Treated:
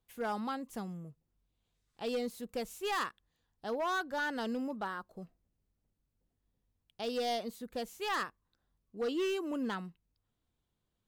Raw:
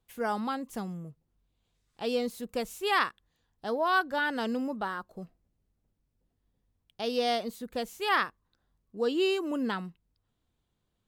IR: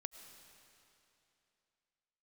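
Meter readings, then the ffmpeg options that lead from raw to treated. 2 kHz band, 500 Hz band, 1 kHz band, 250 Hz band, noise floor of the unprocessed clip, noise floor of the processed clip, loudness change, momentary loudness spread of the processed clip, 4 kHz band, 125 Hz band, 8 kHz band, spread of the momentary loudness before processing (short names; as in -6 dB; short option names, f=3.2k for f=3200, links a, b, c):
-7.5 dB, -5.5 dB, -6.5 dB, -5.0 dB, -79 dBFS, -83 dBFS, -6.0 dB, 12 LU, -6.5 dB, -4.5 dB, -2.0 dB, 14 LU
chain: -af "volume=24.5dB,asoftclip=hard,volume=-24.5dB,volume=-4.5dB"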